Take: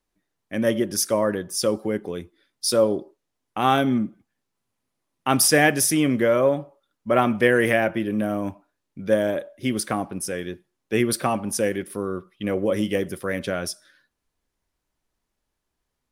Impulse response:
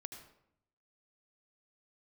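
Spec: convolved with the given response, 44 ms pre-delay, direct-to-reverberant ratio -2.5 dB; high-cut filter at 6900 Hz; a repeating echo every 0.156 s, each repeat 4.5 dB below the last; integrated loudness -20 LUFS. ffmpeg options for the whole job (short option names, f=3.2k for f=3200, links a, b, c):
-filter_complex "[0:a]lowpass=6.9k,aecho=1:1:156|312|468|624|780|936|1092|1248|1404:0.596|0.357|0.214|0.129|0.0772|0.0463|0.0278|0.0167|0.01,asplit=2[a][b];[1:a]atrim=start_sample=2205,adelay=44[c];[b][c]afir=irnorm=-1:irlink=0,volume=6.5dB[d];[a][d]amix=inputs=2:normalize=0,volume=-2.5dB"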